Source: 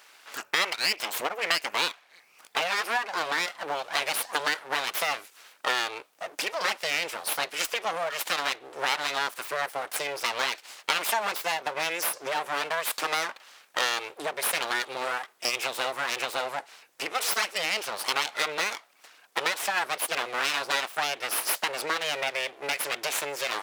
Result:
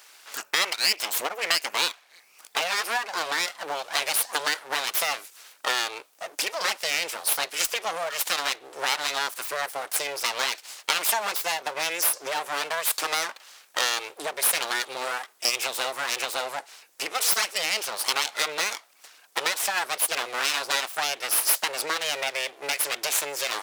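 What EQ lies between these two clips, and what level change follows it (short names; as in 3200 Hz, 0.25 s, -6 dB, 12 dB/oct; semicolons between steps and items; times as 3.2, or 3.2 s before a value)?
tone controls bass -4 dB, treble +7 dB; 0.0 dB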